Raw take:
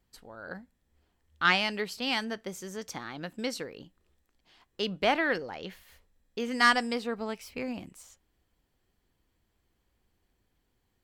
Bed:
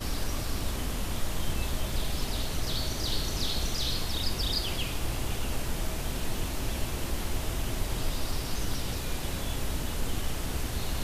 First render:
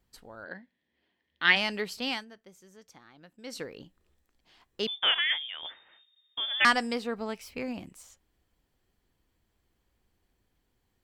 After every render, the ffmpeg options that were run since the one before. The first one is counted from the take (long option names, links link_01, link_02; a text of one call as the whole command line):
ffmpeg -i in.wav -filter_complex "[0:a]asplit=3[link_01][link_02][link_03];[link_01]afade=type=out:start_time=0.44:duration=0.02[link_04];[link_02]highpass=220,equalizer=frequency=460:width_type=q:width=4:gain=-4,equalizer=frequency=790:width_type=q:width=4:gain=-5,equalizer=frequency=1300:width_type=q:width=4:gain=-10,equalizer=frequency=1900:width_type=q:width=4:gain=9,equalizer=frequency=3200:width_type=q:width=4:gain=5,lowpass=frequency=4500:width=0.5412,lowpass=frequency=4500:width=1.3066,afade=type=in:start_time=0.44:duration=0.02,afade=type=out:start_time=1.55:duration=0.02[link_05];[link_03]afade=type=in:start_time=1.55:duration=0.02[link_06];[link_04][link_05][link_06]amix=inputs=3:normalize=0,asettb=1/sr,asplit=3[link_07][link_08][link_09];[link_07]atrim=end=4.874[link_10];[link_08]atrim=start=4.87:end=6.65,asetpts=PTS-STARTPTS,afade=type=in:duration=0.004:curve=qsin,afade=type=out:start_time=1.776:duration=0.004:curve=qsin,lowpass=frequency=3100:width_type=q:width=0.5098,lowpass=frequency=3100:width_type=q:width=0.6013,lowpass=frequency=3100:width_type=q:width=0.9,lowpass=frequency=3100:width_type=q:width=2.563,afreqshift=-3700[link_11];[link_09]atrim=start=6.646[link_12];[link_10][link_11]acrossfade=duration=0.004:curve1=hsin:curve2=qsin[link_13];[link_13][link_12]acrossfade=duration=0.004:curve1=qsin:curve2=hsin,asplit=3[link_14][link_15][link_16];[link_14]atrim=end=2.25,asetpts=PTS-STARTPTS,afade=type=out:start_time=2.06:duration=0.19:silence=0.16788[link_17];[link_15]atrim=start=2.25:end=3.43,asetpts=PTS-STARTPTS,volume=-15.5dB[link_18];[link_16]atrim=start=3.43,asetpts=PTS-STARTPTS,afade=type=in:duration=0.19:silence=0.16788[link_19];[link_17][link_18][link_19]concat=n=3:v=0:a=1" out.wav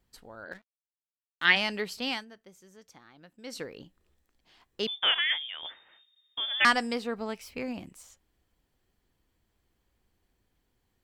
ffmpeg -i in.wav -filter_complex "[0:a]asettb=1/sr,asplit=3[link_01][link_02][link_03];[link_01]atrim=end=0.524[link_04];[link_02]atrim=start=0.52:end=1.45,asetpts=PTS-STARTPTS,afade=type=in:duration=0.004:curve=qsin,afade=type=out:start_time=0.926:duration=0.004:curve=qsin,aeval=exprs='sgn(val(0))*max(abs(val(0))-0.00316,0)':channel_layout=same[link_05];[link_03]atrim=start=1.446[link_06];[link_04][link_05]acrossfade=duration=0.004:curve1=hsin:curve2=qsin[link_07];[link_07][link_06]acrossfade=duration=0.004:curve1=qsin:curve2=hsin" out.wav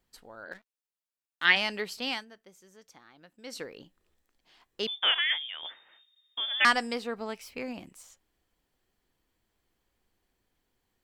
ffmpeg -i in.wav -af "equalizer=frequency=66:width=0.34:gain=-7" out.wav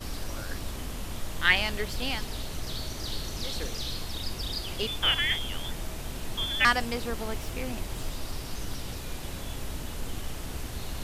ffmpeg -i in.wav -i bed.wav -filter_complex "[1:a]volume=-4dB[link_01];[0:a][link_01]amix=inputs=2:normalize=0" out.wav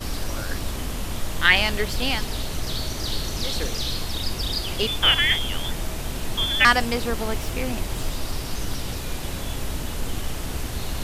ffmpeg -i in.wav -af "volume=7dB,alimiter=limit=-3dB:level=0:latency=1" out.wav